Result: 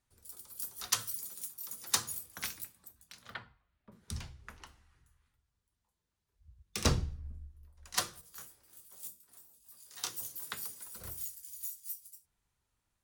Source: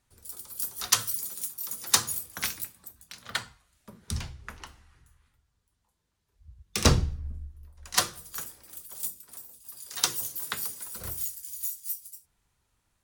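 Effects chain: 3.34–3.92 s: distance through air 400 m; 8.21–10.17 s: detune thickener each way 47 cents; trim -8 dB

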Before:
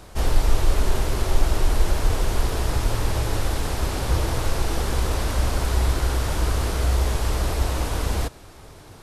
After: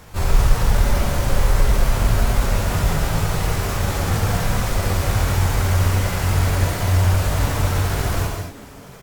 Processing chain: frequency-shifting echo 381 ms, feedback 42%, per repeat +130 Hz, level -23 dB; pitch shift +6.5 st; gated-style reverb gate 260 ms flat, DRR -1.5 dB

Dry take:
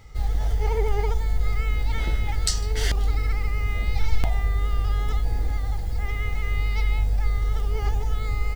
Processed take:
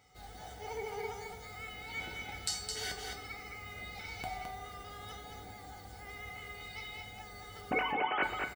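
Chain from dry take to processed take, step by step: 7.71–8.23 s: formants replaced by sine waves; Bessel high-pass 210 Hz, order 2; feedback comb 750 Hz, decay 0.23 s, mix 90%; delay 214 ms -5 dB; on a send at -9 dB: reverberation RT60 0.85 s, pre-delay 3 ms; on the sum: trim +6 dB

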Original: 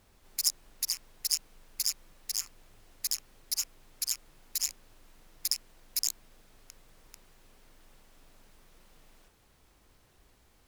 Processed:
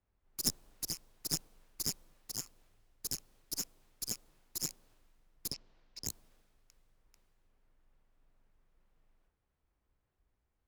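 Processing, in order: 5.51–6.06 s: low-pass 5.2 kHz 24 dB/octave; one-sided clip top -31 dBFS; dynamic bell 2 kHz, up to -7 dB, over -55 dBFS, Q 0.81; three bands expanded up and down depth 70%; trim -5 dB

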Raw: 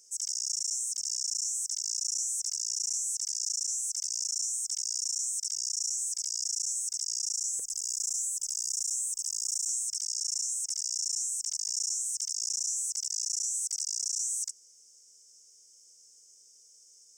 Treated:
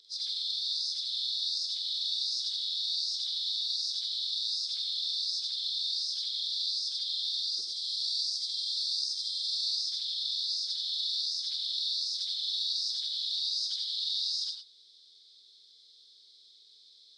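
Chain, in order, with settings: frequency axis rescaled in octaves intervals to 86%; gated-style reverb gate 130 ms rising, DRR 4.5 dB

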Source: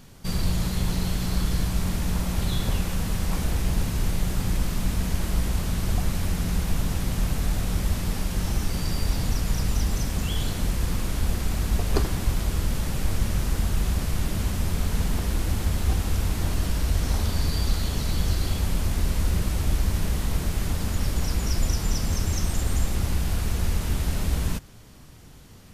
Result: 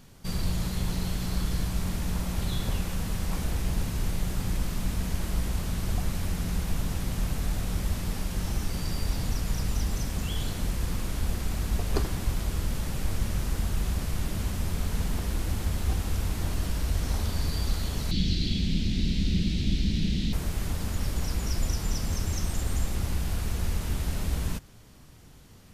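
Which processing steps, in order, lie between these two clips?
18.11–20.33 s: FFT filter 100 Hz 0 dB, 200 Hz +11 dB, 330 Hz +4 dB, 530 Hz -9 dB, 1.1 kHz -20 dB, 2.2 kHz +2 dB, 3.9 kHz +11 dB, 11 kHz -17 dB; trim -4 dB

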